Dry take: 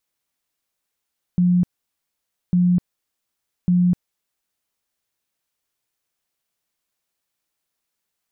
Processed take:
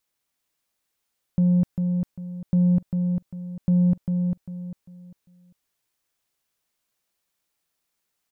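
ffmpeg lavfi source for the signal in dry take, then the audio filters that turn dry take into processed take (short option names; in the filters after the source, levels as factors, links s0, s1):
-f lavfi -i "aevalsrc='0.224*sin(2*PI*178*mod(t,1.15))*lt(mod(t,1.15),45/178)':d=3.45:s=44100"
-af "asoftclip=type=tanh:threshold=0.2,aecho=1:1:398|796|1194|1592:0.562|0.169|0.0506|0.0152"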